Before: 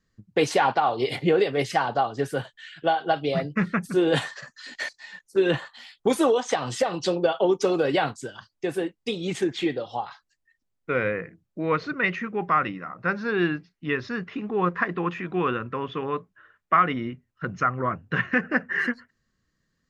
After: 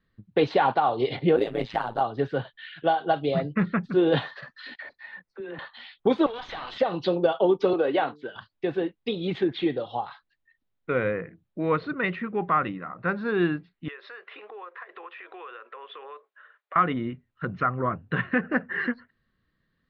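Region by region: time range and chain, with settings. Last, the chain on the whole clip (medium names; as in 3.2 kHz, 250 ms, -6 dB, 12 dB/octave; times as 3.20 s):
1.36–2.01 s: AM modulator 110 Hz, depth 95% + careless resampling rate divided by 4×, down none, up zero stuff
4.76–5.59 s: high-order bell 4.6 kHz -10 dB + compression, threshold -36 dBFS + phase dispersion lows, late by 46 ms, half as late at 540 Hz
6.26–6.78 s: high-pass 1 kHz + valve stage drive 31 dB, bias 0.7 + level flattener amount 70%
7.73–8.36 s: three-band isolator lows -17 dB, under 240 Hz, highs -17 dB, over 4 kHz + de-hum 148.4 Hz, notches 3
13.88–16.76 s: steep high-pass 440 Hz + compression 5:1, threshold -41 dBFS
whole clip: Chebyshev low-pass 3.9 kHz, order 4; dynamic bell 2.2 kHz, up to -6 dB, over -40 dBFS, Q 0.82; trim +1.5 dB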